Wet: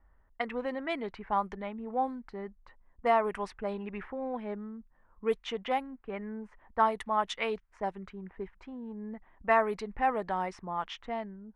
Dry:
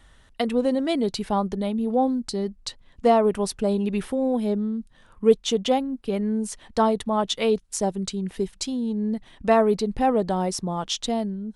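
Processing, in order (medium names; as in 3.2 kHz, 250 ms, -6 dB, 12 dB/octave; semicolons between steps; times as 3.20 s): graphic EQ 125/250/500/1000/2000/4000/8000 Hz -10/-5/-4/+6/+11/-7/-4 dB; level-controlled noise filter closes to 550 Hz, open at -18 dBFS; trim -8 dB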